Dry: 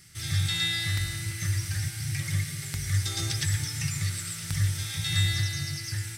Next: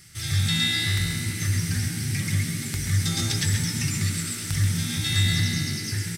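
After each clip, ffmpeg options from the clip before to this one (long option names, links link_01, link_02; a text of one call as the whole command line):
ffmpeg -i in.wav -filter_complex "[0:a]asplit=2[link_01][link_02];[link_02]asoftclip=type=hard:threshold=-22.5dB,volume=-6dB[link_03];[link_01][link_03]amix=inputs=2:normalize=0,asplit=6[link_04][link_05][link_06][link_07][link_08][link_09];[link_05]adelay=132,afreqshift=69,volume=-8dB[link_10];[link_06]adelay=264,afreqshift=138,volume=-15.3dB[link_11];[link_07]adelay=396,afreqshift=207,volume=-22.7dB[link_12];[link_08]adelay=528,afreqshift=276,volume=-30dB[link_13];[link_09]adelay=660,afreqshift=345,volume=-37.3dB[link_14];[link_04][link_10][link_11][link_12][link_13][link_14]amix=inputs=6:normalize=0" out.wav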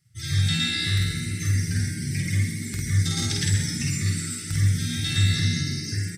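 ffmpeg -i in.wav -filter_complex "[0:a]afftdn=noise_reduction=22:noise_floor=-38,asplit=2[link_01][link_02];[link_02]adelay=50,volume=-2.5dB[link_03];[link_01][link_03]amix=inputs=2:normalize=0,volume=-1.5dB" out.wav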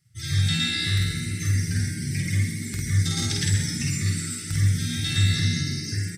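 ffmpeg -i in.wav -af anull out.wav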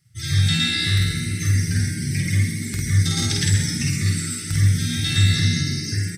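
ffmpeg -i in.wav -af "bandreject=frequency=7200:width=26,volume=4dB" out.wav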